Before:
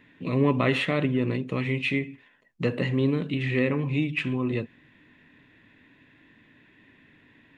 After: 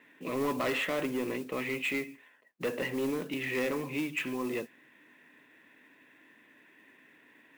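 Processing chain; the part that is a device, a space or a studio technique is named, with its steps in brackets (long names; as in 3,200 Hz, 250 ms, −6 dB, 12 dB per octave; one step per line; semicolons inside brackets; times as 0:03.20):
carbon microphone (band-pass filter 350–3,000 Hz; soft clipping −25.5 dBFS, distortion −11 dB; noise that follows the level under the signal 19 dB)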